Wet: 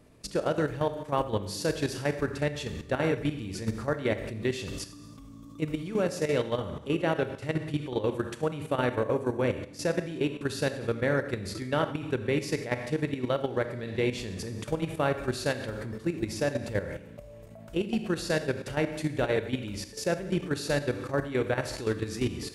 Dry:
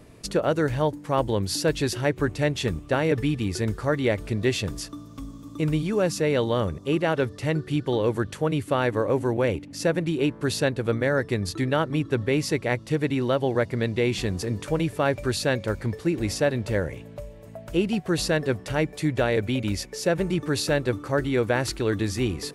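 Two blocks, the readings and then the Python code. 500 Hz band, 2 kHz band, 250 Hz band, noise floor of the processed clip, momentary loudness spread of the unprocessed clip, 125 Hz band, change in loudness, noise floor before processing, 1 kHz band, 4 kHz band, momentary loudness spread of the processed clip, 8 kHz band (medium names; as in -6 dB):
-4.5 dB, -5.0 dB, -5.5 dB, -47 dBFS, 4 LU, -6.5 dB, -5.5 dB, -44 dBFS, -4.5 dB, -6.0 dB, 6 LU, -6.5 dB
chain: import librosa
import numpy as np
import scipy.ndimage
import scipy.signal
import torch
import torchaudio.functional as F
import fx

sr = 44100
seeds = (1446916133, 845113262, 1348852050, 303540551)

y = fx.rev_schroeder(x, sr, rt60_s=0.86, comb_ms=28, drr_db=4.5)
y = fx.level_steps(y, sr, step_db=11)
y = y * 10.0 ** (-3.0 / 20.0)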